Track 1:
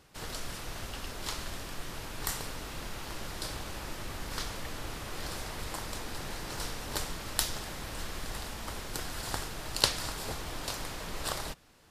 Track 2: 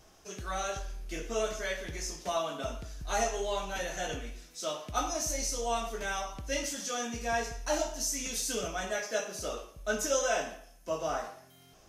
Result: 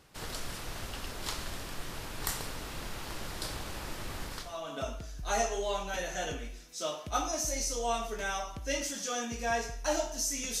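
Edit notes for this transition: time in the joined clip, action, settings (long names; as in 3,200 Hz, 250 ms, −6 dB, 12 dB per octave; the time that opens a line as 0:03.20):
track 1
0:04.51: continue with track 2 from 0:02.33, crossfade 0.54 s quadratic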